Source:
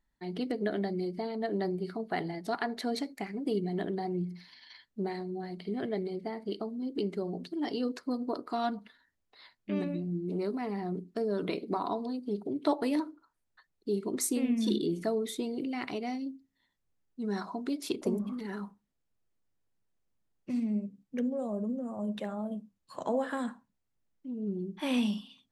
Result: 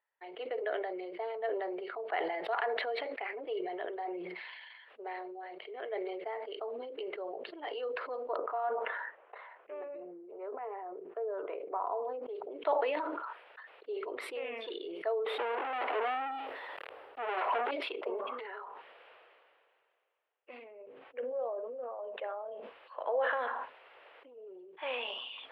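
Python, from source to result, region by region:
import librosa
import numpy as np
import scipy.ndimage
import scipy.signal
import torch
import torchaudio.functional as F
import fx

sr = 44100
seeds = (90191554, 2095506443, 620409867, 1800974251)

y = fx.chain(x, sr, fx.lowpass(hz=1200.0, slope=12),
    fx.low_shelf(hz=160.0, db=-9.0), at=(8.36, 12.29))
y = fx.chain(y, sr, fx.zero_step(step_db=-43.5),
    fx.peak_eq(hz=2700.0, db=-13.0, octaves=2.5),
    fx.leveller(passes=5), at=(15.26, 17.71))
y = fx.chain(y, sr, fx.lowpass(hz=2300.0, slope=6),
    fx.sustainer(db_per_s=130.0), at=(20.64, 22.57))
y = scipy.signal.sosfilt(scipy.signal.ellip(3, 1.0, 40, [480.0, 2900.0], 'bandpass', fs=sr, output='sos'), y)
y = fx.sustainer(y, sr, db_per_s=25.0)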